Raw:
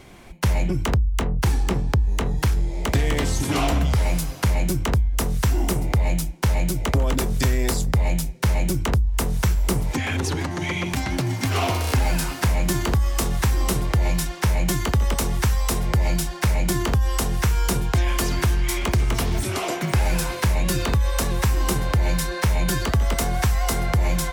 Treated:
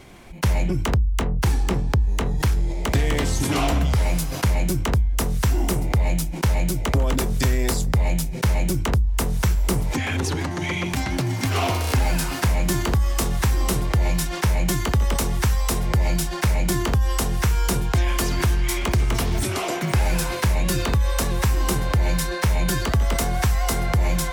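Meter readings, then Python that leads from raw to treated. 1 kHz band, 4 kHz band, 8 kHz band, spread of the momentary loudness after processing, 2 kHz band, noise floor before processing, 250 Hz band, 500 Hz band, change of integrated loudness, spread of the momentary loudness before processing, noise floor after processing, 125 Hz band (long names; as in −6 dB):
+0.5 dB, +0.5 dB, +0.5 dB, 2 LU, 0.0 dB, −30 dBFS, +0.5 dB, +0.5 dB, 0.0 dB, 3 LU, −28 dBFS, 0.0 dB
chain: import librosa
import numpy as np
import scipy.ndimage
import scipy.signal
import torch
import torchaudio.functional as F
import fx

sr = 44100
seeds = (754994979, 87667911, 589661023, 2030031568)

y = fx.sustainer(x, sr, db_per_s=55.0)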